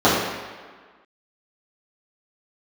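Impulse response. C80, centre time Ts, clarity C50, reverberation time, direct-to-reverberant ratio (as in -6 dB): 3.0 dB, 78 ms, 0.5 dB, 1.6 s, -11.5 dB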